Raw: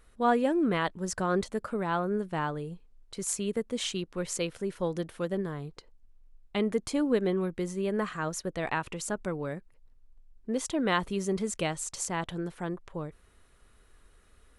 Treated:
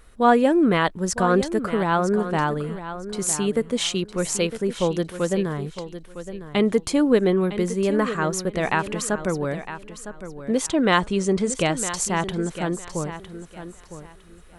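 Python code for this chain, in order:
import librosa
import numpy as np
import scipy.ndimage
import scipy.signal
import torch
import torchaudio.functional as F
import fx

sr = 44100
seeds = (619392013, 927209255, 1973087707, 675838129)

y = fx.steep_lowpass(x, sr, hz=9500.0, slope=72, at=(10.69, 11.7))
y = fx.echo_feedback(y, sr, ms=958, feedback_pct=23, wet_db=-12)
y = y * librosa.db_to_amplitude(8.5)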